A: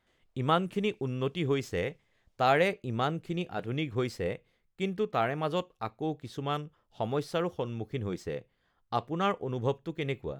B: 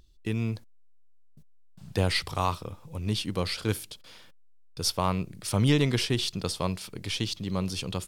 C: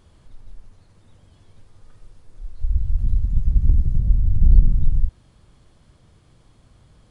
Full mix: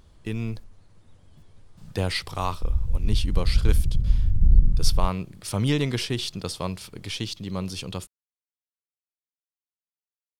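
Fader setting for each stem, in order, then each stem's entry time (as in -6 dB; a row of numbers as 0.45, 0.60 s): off, -0.5 dB, -3.5 dB; off, 0.00 s, 0.00 s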